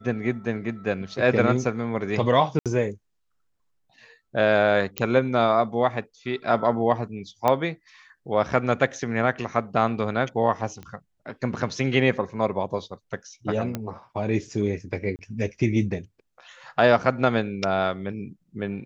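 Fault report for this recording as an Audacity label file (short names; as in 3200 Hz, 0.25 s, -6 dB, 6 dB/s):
2.590000	2.660000	gap 67 ms
4.980000	4.980000	pop -8 dBFS
7.480000	7.480000	pop -9 dBFS
10.830000	10.830000	pop -25 dBFS
13.750000	13.750000	pop -14 dBFS
15.160000	15.190000	gap 29 ms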